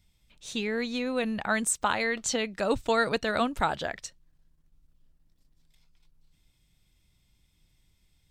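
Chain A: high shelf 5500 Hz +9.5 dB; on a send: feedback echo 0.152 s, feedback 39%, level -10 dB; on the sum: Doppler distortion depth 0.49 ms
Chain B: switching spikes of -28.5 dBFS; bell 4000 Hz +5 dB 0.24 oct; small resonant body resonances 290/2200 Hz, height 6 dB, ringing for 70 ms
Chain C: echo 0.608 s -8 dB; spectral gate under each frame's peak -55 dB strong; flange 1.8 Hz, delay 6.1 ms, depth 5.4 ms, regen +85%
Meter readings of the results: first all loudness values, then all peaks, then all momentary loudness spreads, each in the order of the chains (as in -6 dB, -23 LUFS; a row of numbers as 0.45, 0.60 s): -26.5, -29.0, -33.0 LUFS; -9.0, -12.0, -16.5 dBFS; 10, 18, 12 LU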